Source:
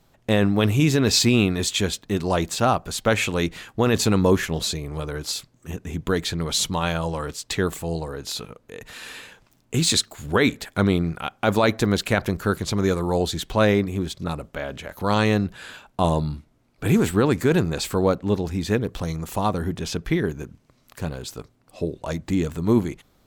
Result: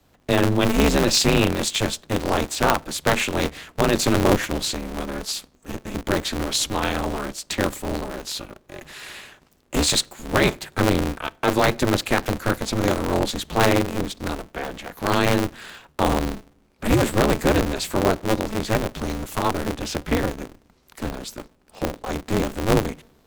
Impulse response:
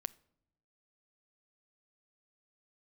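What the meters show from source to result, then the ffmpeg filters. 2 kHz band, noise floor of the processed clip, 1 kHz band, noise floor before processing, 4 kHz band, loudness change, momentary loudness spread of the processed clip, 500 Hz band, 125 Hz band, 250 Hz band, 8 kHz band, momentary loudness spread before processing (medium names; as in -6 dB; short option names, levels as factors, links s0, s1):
+2.0 dB, -60 dBFS, +2.5 dB, -62 dBFS, +1.0 dB, 0.0 dB, 13 LU, +0.5 dB, -2.5 dB, -1.0 dB, +1.0 dB, 13 LU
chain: -filter_complex "[0:a]afreqshift=18,asplit=2[s0][s1];[1:a]atrim=start_sample=2205,asetrate=48510,aresample=44100[s2];[s1][s2]afir=irnorm=-1:irlink=0,volume=1.33[s3];[s0][s3]amix=inputs=2:normalize=0,aeval=exprs='val(0)*sgn(sin(2*PI*110*n/s))':c=same,volume=0.531"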